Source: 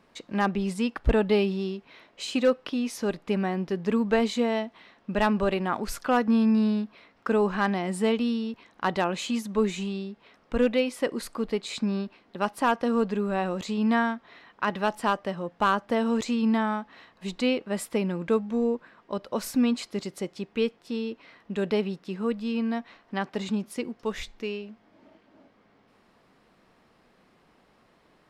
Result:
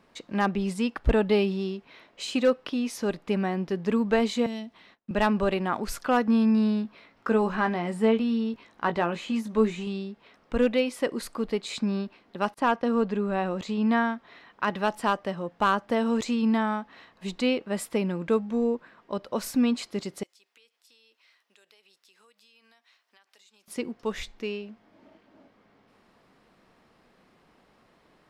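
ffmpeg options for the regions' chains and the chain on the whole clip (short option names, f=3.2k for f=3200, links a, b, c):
-filter_complex "[0:a]asettb=1/sr,asplit=3[a][b][c];[a]atrim=end=4.464[d];[b]atrim=start=4.46:end=5.11,asetpts=PTS-STARTPTS,afade=t=in:d=0.004:c=qsin,afade=t=out:st=0.646:d=0.004:c=qsin,agate=range=-29dB:threshold=-57dB:ratio=16:release=100:detection=peak,acrossover=split=270|3000[e][f][g];[f]acompressor=threshold=-55dB:ratio=2:attack=3.2:release=140:knee=2.83:detection=peak[h];[e][h][g]amix=inputs=3:normalize=0[i];[c]atrim=start=5.106[j];[d][i]acrossfade=d=0.004:c1=hsin:c2=qsin[k];[k][j]acrossfade=d=0.004:c1=qsin:c2=hsin,asettb=1/sr,asplit=3[l][m][n];[l]atrim=end=6.834[o];[m]atrim=start=6.83:end=9.87,asetpts=PTS-STARTPTS,afade=t=in:d=0.004:c=qsin,afade=t=out:st=3.036:d=0.004:c=qsin,asplit=2[p][q];[q]adelay=18,volume=-8dB[r];[p][r]amix=inputs=2:normalize=0,atrim=end_sample=134064,acrossover=split=2700[s][t];[t]acompressor=threshold=-47dB:ratio=4:attack=1:release=60[u];[s][u]amix=inputs=2:normalize=0[v];[n]atrim=start=9.866[w];[o][v]acrossfade=d=0.004:c1=hsin:c2=qsin[x];[x][w]acrossfade=d=0.004:c1=qsin:c2=hsin,asettb=1/sr,asplit=3[y][z][aa];[y]atrim=end=12.544[ab];[z]atrim=start=12.54:end=14.13,asetpts=PTS-STARTPTS,afade=t=in:d=0.004:c=qsin,afade=t=out:st=1.586:d=0.004:c=qsin,agate=range=-33dB:threshold=-39dB:ratio=3:release=100:detection=peak,highshelf=f=7.6k:g=-11.5[ac];[aa]atrim=start=14.126[ad];[ab][ac]acrossfade=d=0.004:c1=hsin:c2=qsin[ae];[ae][ad]acrossfade=d=0.004:c1=qsin:c2=hsin,asettb=1/sr,asplit=3[af][ag][ah];[af]atrim=end=20.234[ai];[ag]atrim=start=20.23:end=23.68,asetpts=PTS-STARTPTS,afade=t=in:d=0.004:c=qsin,afade=t=out:st=3.446:d=0.004:c=qsin,highpass=320,aderivative,acompressor=threshold=-56dB:ratio=8:attack=3.2:release=140:knee=1:detection=peak[aj];[ah]atrim=start=23.676[ak];[ai][aj]acrossfade=d=0.004:c1=hsin:c2=qsin[al];[al][ak]acrossfade=d=0.004:c1=qsin:c2=hsin"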